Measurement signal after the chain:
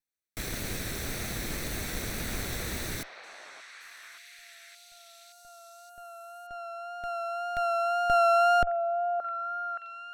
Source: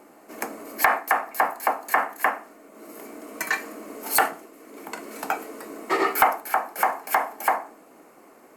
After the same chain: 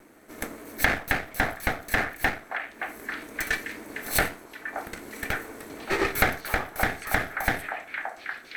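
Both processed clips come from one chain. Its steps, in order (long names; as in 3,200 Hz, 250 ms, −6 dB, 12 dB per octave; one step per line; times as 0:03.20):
lower of the sound and its delayed copy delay 0.51 ms
echo through a band-pass that steps 573 ms, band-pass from 860 Hz, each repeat 0.7 octaves, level −3.5 dB
pitch vibrato 1.9 Hz 27 cents
level −1.5 dB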